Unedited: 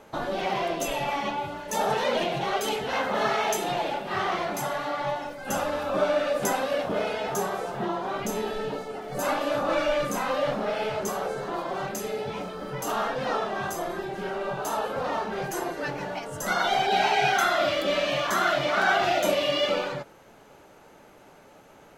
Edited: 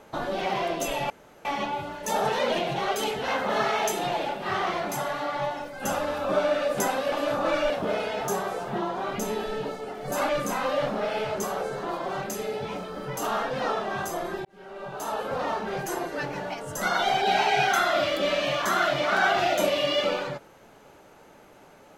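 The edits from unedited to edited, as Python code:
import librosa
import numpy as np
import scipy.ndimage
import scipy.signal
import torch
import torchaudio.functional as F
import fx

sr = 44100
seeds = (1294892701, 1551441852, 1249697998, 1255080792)

y = fx.edit(x, sr, fx.insert_room_tone(at_s=1.1, length_s=0.35),
    fx.move(start_s=9.36, length_s=0.58, to_s=6.77),
    fx.fade_in_span(start_s=14.1, length_s=0.86), tone=tone)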